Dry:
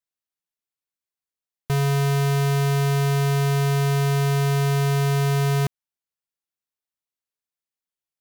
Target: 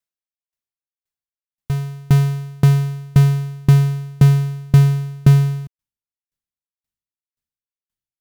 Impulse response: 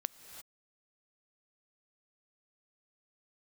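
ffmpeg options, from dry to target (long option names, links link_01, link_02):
-af "asubboost=boost=6:cutoff=210,aeval=exprs='val(0)*pow(10,-34*if(lt(mod(1.9*n/s,1),2*abs(1.9)/1000),1-mod(1.9*n/s,1)/(2*abs(1.9)/1000),(mod(1.9*n/s,1)-2*abs(1.9)/1000)/(1-2*abs(1.9)/1000))/20)':channel_layout=same,volume=4.5dB"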